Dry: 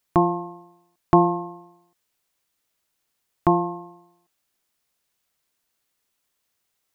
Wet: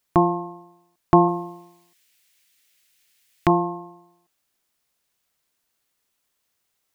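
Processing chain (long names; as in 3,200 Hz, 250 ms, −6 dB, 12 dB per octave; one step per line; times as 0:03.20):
0:01.28–0:03.50: high shelf with overshoot 1,500 Hz +10.5 dB, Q 1.5
level +1 dB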